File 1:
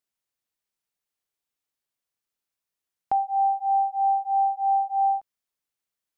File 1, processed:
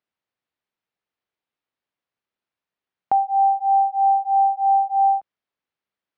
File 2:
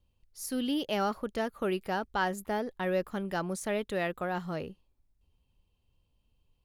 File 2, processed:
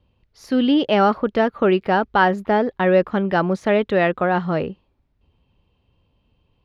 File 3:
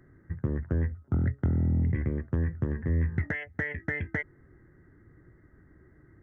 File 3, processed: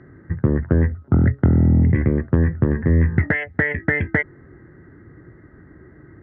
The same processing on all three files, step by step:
high-pass filter 110 Hz 6 dB per octave
high-frequency loss of the air 270 metres
loudness normalisation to −19 LKFS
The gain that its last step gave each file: +6.0, +15.5, +14.5 decibels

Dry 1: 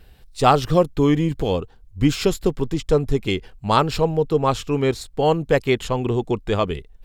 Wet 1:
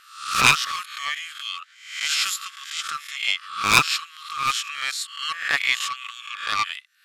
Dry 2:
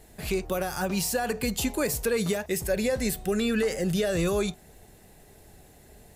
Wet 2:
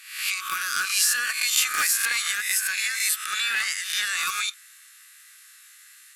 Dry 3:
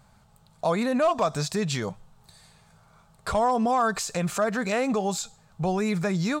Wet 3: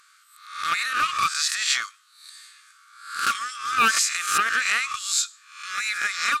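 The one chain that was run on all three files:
peak hold with a rise ahead of every peak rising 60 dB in 0.61 s
linear-phase brick-wall band-pass 1,100–13,000 Hz
highs frequency-modulated by the lows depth 0.35 ms
loudness normalisation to −23 LKFS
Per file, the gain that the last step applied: +4.5, +8.0, +8.0 decibels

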